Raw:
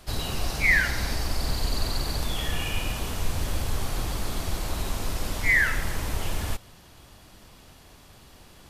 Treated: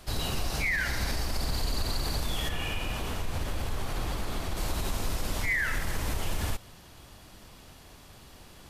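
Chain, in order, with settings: limiter -20.5 dBFS, peak gain reduction 11.5 dB; 2.49–4.57 tone controls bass -2 dB, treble -6 dB

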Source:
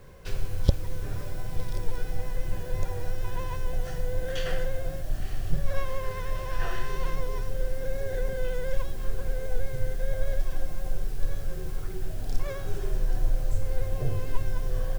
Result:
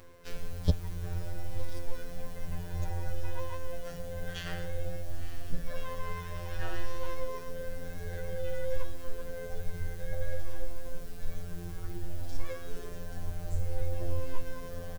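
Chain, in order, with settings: robotiser 86.5 Hz; reverse; upward compressor, threshold -36 dBFS; reverse; endless flanger 5.5 ms +0.56 Hz; gain +1 dB

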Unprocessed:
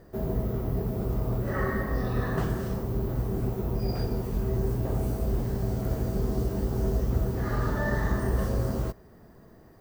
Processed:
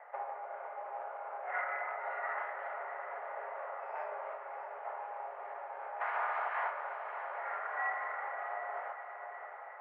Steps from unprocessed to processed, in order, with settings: 6–6.69 spectral limiter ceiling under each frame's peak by 30 dB; compressor 6:1, threshold -35 dBFS, peak gain reduction 14.5 dB; one-sided clip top -33.5 dBFS; 3.11–4.33 doubler 41 ms -2.5 dB; diffused feedback echo 0.636 s, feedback 56%, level -8 dB; on a send at -6 dB: reverb RT60 0.50 s, pre-delay 3 ms; on the sum: mistuned SSB +170 Hz 510–2200 Hz; gain +6.5 dB

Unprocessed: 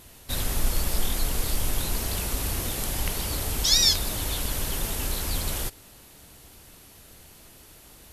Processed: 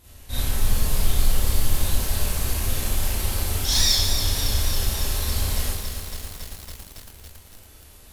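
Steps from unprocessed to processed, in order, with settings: resonant low shelf 120 Hz +7.5 dB, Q 1.5; wavefolder -11.5 dBFS; Schroeder reverb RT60 0.63 s, combs from 29 ms, DRR -7.5 dB; lo-fi delay 0.278 s, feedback 80%, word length 5-bit, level -8 dB; gain -8 dB

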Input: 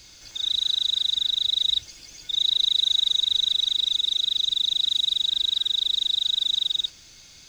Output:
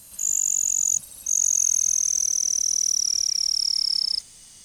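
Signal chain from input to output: speed glide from 189% -> 133%; fifteen-band EQ 100 Hz -4 dB, 400 Hz -5 dB, 10000 Hz +4 dB

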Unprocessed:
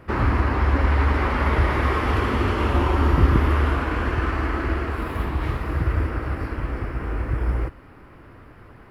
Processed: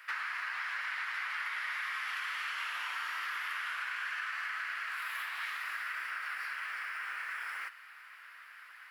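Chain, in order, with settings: Chebyshev high-pass 1600 Hz, order 3; compressor 6:1, threshold -40 dBFS, peak gain reduction 11.5 dB; gain +5 dB

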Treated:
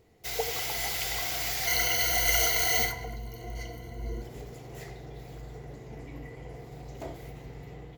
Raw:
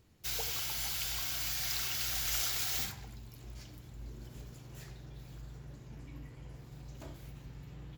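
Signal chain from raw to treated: 1.67–4.22 ripple EQ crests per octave 1.9, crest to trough 16 dB; AGC gain up to 3.5 dB; small resonant body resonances 460/700/2000 Hz, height 14 dB, ringing for 25 ms

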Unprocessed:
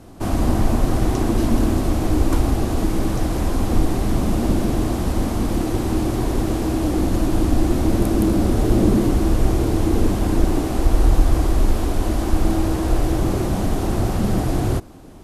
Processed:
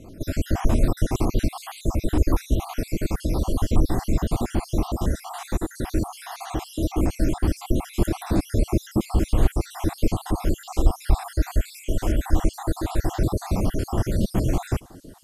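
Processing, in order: random spectral dropouts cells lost 62%; on a send: thin delay 0.802 s, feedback 76%, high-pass 5200 Hz, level -18 dB; on the sum: dynamic EQ 280 Hz, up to -3 dB, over -34 dBFS, Q 0.95

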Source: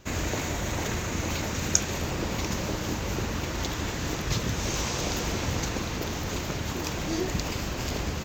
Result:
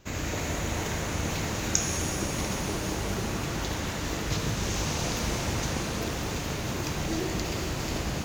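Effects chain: shimmer reverb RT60 3.9 s, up +7 st, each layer -8 dB, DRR 0.5 dB; gain -3.5 dB

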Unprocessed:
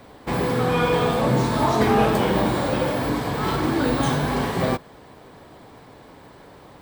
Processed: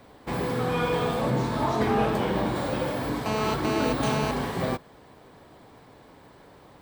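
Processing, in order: 1.3–2.56 high shelf 6100 Hz -6 dB; 3.26–4.31 GSM buzz -23 dBFS; gain -5.5 dB

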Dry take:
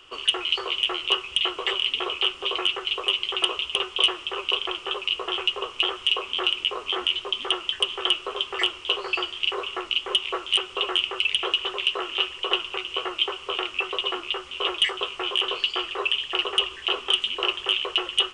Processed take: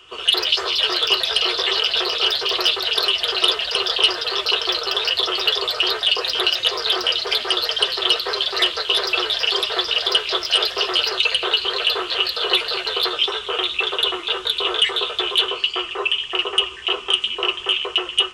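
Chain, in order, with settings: echoes that change speed 87 ms, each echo +3 st, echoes 3; notch comb 280 Hz; gain +4.5 dB

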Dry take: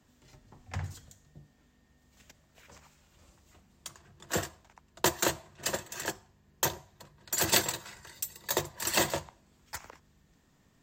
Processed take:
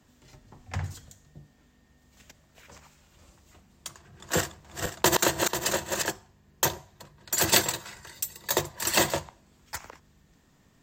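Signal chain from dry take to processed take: 3.88–6.03 regenerating reverse delay 0.245 s, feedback 48%, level -2.5 dB; gain +4 dB

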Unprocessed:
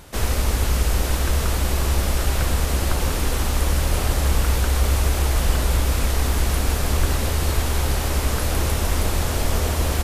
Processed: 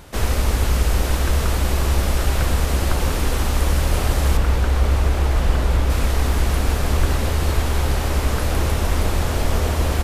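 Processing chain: bell 13000 Hz -4 dB 2.2 oct, from 4.37 s -13 dB, from 5.9 s -6.5 dB; gain +2 dB

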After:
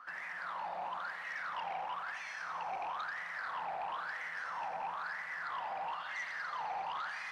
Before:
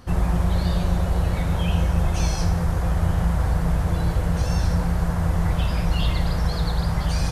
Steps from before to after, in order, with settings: HPF 300 Hz 12 dB/oct; bell 410 Hz -9.5 dB 0.67 oct; limiter -28 dBFS, peak gain reduction 9 dB; wah 1 Hz 770–2000 Hz, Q 9.9; sine folder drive 7 dB, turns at -35.5 dBFS; on a send: thinning echo 86 ms, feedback 84%, high-pass 480 Hz, level -11.5 dB

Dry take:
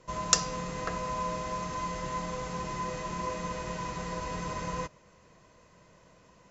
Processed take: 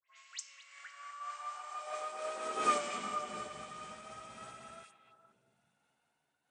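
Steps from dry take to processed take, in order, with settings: gliding pitch shift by +7.5 st starting unshifted; Doppler pass-by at 2.67, 17 m/s, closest 1.4 m; bell 180 Hz -13 dB 1.9 oct; in parallel at +2.5 dB: compressor, threshold -57 dBFS, peak gain reduction 21.5 dB; on the sum: dispersion highs, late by 91 ms, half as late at 2500 Hz; high-pass sweep 2300 Hz -> 140 Hz, 0.6–3.47; on a send: delay with a stepping band-pass 0.234 s, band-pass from 2600 Hz, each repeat -1.4 oct, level -7 dB; on the sum: noise-modulated level, depth 50%; gain +9.5 dB

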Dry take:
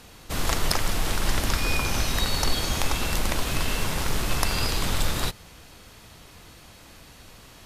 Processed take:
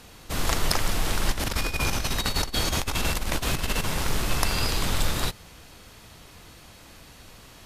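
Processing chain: 1.31–3.84 negative-ratio compressor -25 dBFS, ratio -0.5

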